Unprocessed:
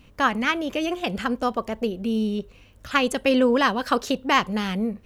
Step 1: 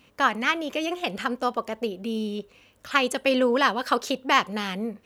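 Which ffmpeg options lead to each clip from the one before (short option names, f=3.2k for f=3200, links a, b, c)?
-af "highpass=f=360:p=1"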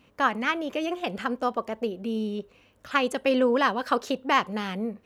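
-af "highshelf=f=2.2k:g=-7.5"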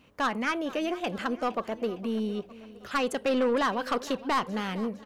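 -af "asoftclip=type=tanh:threshold=-20dB,aecho=1:1:460|920|1380|1840:0.126|0.0667|0.0354|0.0187"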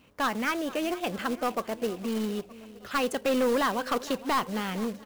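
-af "acrusher=bits=3:mode=log:mix=0:aa=0.000001"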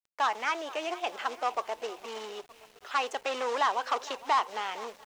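-af "highpass=f=450:w=0.5412,highpass=f=450:w=1.3066,equalizer=f=520:t=q:w=4:g=-7,equalizer=f=870:t=q:w=4:g=6,equalizer=f=1.6k:t=q:w=4:g=-3,equalizer=f=4.5k:t=q:w=4:g=-4,lowpass=f=6.8k:w=0.5412,lowpass=f=6.8k:w=1.3066,aeval=exprs='val(0)*gte(abs(val(0)),0.00224)':c=same"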